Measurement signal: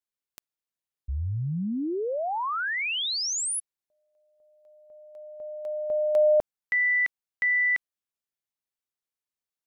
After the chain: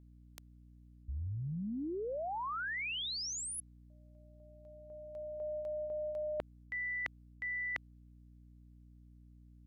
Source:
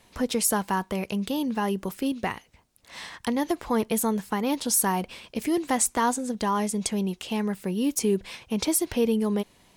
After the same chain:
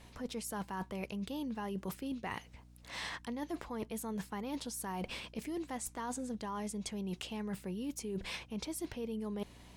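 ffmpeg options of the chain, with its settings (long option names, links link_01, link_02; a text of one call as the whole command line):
ffmpeg -i in.wav -af "areverse,acompressor=threshold=-37dB:ratio=12:attack=14:release=111:knee=1:detection=rms,areverse,highshelf=frequency=8900:gain=-6,aeval=exprs='val(0)+0.00141*(sin(2*PI*60*n/s)+sin(2*PI*2*60*n/s)/2+sin(2*PI*3*60*n/s)/3+sin(2*PI*4*60*n/s)/4+sin(2*PI*5*60*n/s)/5)':channel_layout=same" out.wav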